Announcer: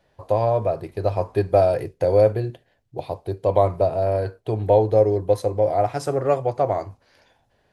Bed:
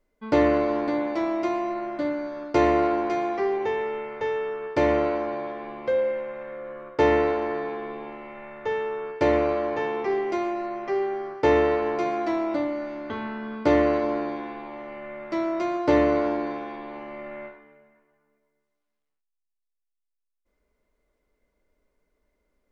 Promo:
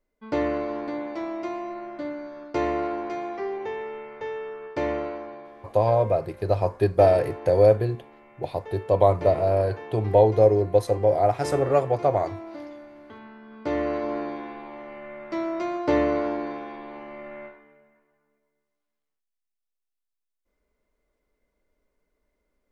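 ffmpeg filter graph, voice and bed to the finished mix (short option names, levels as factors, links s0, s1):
-filter_complex "[0:a]adelay=5450,volume=0.944[s0];[1:a]volume=1.78,afade=t=out:st=4.88:d=0.61:silence=0.446684,afade=t=in:st=13.47:d=0.72:silence=0.298538[s1];[s0][s1]amix=inputs=2:normalize=0"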